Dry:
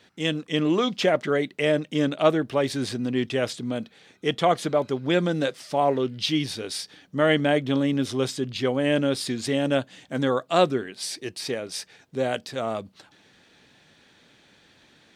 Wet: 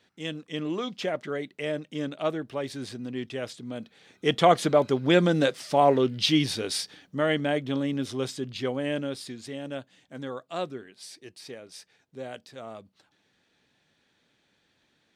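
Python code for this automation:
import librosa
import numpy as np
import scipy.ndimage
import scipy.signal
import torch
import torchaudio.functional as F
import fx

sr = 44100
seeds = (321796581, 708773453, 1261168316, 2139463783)

y = fx.gain(x, sr, db=fx.line((3.65, -8.5), (4.38, 2.0), (6.78, 2.0), (7.27, -5.0), (8.7, -5.0), (9.49, -12.5)))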